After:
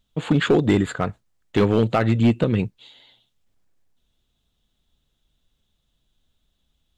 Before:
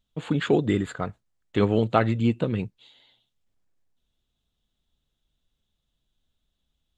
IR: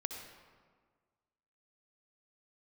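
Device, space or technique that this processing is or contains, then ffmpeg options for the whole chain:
limiter into clipper: -af "alimiter=limit=-11.5dB:level=0:latency=1:release=146,asoftclip=type=hard:threshold=-16.5dB,volume=6.5dB"

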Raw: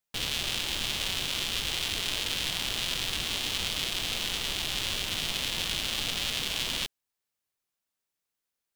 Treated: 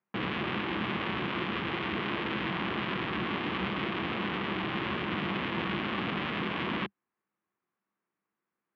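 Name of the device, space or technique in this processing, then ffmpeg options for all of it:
bass cabinet: -af "highpass=frequency=89:width=0.5412,highpass=frequency=89:width=1.3066,equalizer=frequency=100:width_type=q:width=4:gain=-6,equalizer=frequency=200:width_type=q:width=4:gain=10,equalizer=frequency=340:width_type=q:width=4:gain=9,equalizer=frequency=600:width_type=q:width=4:gain=-3,equalizer=frequency=1100:width_type=q:width=4:gain=6,lowpass=frequency=2100:width=0.5412,lowpass=frequency=2100:width=1.3066,volume=5dB"

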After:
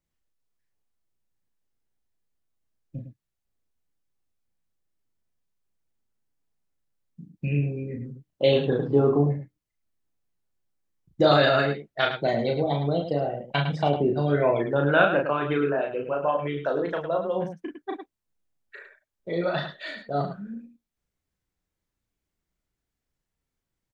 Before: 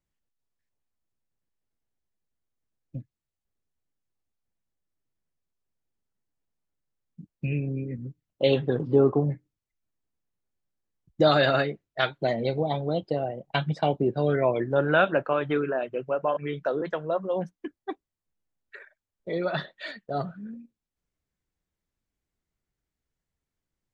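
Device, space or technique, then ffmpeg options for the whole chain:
slapback doubling: -filter_complex "[0:a]asplit=3[link_01][link_02][link_03];[link_02]adelay=35,volume=-3.5dB[link_04];[link_03]adelay=106,volume=-8.5dB[link_05];[link_01][link_04][link_05]amix=inputs=3:normalize=0"

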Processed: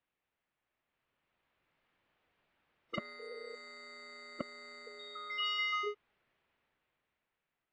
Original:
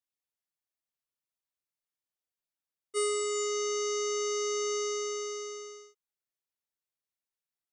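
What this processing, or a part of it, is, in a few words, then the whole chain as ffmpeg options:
action camera in a waterproof case: -filter_complex "[0:a]asettb=1/sr,asplit=3[link_01][link_02][link_03];[link_01]atrim=end=2.984[link_04];[link_02]atrim=start=2.98:end=4.41,asetpts=PTS-STARTPTS,afade=type=in:duration=0.004:curve=qsin,afade=type=out:start_time=1.426:duration=0.004:curve=qsin,highpass=290[link_05];[link_03]atrim=start=4.406[link_06];[link_04][link_05]acrossfade=duration=0.004:curve1=hsin:curve2=qsin[link_07];[link_07][link_06]acrossfade=duration=0.004:curve1=qsin:curve2=hsin,afftfilt=real='re*lt(hypot(re,im),0.02)':imag='im*lt(hypot(re,im),0.02)':win_size=1024:overlap=0.75,lowpass=frequency=2800:width=0.5412,lowpass=frequency=2800:width=1.3066,dynaudnorm=framelen=290:gausssize=9:maxgain=11dB,volume=12dB" -ar 22050 -c:a aac -b:a 96k

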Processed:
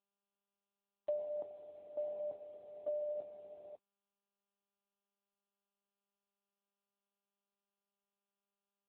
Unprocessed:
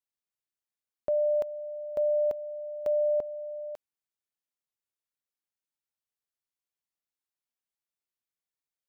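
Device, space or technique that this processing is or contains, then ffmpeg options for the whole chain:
mobile call with aggressive noise cancelling: -af "highpass=frequency=120:poles=1,afftdn=noise_reduction=14:noise_floor=-47,volume=-7.5dB" -ar 8000 -c:a libopencore_amrnb -b:a 10200

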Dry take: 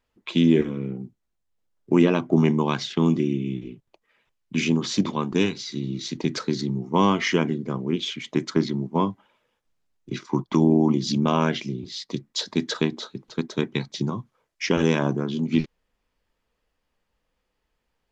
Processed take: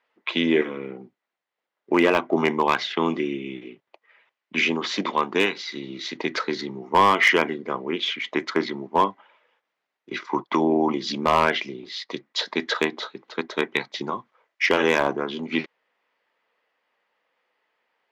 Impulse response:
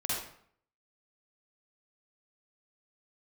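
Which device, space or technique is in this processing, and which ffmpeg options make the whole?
megaphone: -af "highpass=550,lowpass=3000,equalizer=frequency=2000:width_type=o:width=0.22:gain=5,asoftclip=type=hard:threshold=-17.5dB,volume=8dB"

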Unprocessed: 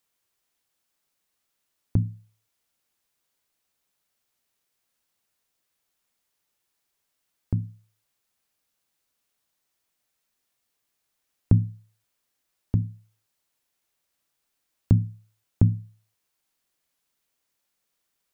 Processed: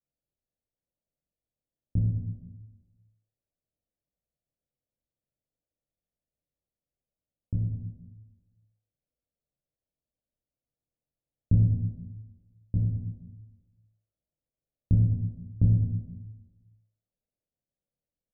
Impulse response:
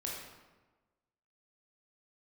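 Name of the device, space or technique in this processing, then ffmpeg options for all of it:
next room: -filter_complex "[0:a]lowpass=frequency=520:width=0.5412,lowpass=frequency=520:width=1.3066,aecho=1:1:1.4:0.51[link_01];[1:a]atrim=start_sample=2205[link_02];[link_01][link_02]afir=irnorm=-1:irlink=0,volume=-4.5dB"

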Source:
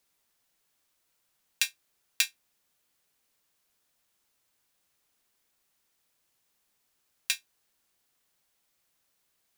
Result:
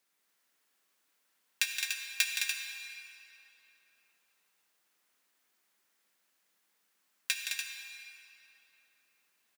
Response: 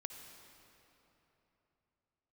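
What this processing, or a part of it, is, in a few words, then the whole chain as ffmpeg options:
stadium PA: -filter_complex "[0:a]highpass=frequency=170:width=0.5412,highpass=frequency=170:width=1.3066,equalizer=frequency=1700:width_type=o:width=1.2:gain=5,aecho=1:1:169.1|212.8|291.5:0.398|0.501|0.447[link_01];[1:a]atrim=start_sample=2205[link_02];[link_01][link_02]afir=irnorm=-1:irlink=0"

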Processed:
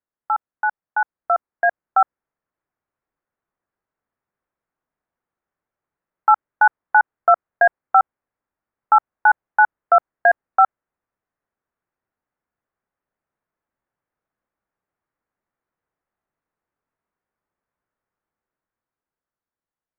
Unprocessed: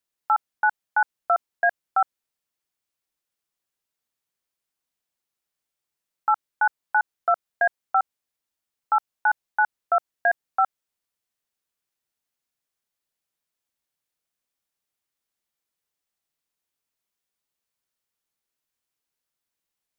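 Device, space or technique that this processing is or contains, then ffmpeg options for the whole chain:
action camera in a waterproof case: -af "lowpass=frequency=1700:width=0.5412,lowpass=frequency=1700:width=1.3066,dynaudnorm=framelen=500:gausssize=7:maxgain=8.5dB" -ar 48000 -c:a aac -b:a 128k

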